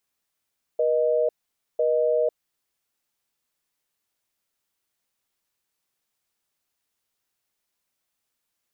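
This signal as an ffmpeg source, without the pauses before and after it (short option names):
-f lavfi -i "aevalsrc='0.0841*(sin(2*PI*480*t)+sin(2*PI*620*t))*clip(min(mod(t,1),0.5-mod(t,1))/0.005,0,1)':d=1.57:s=44100"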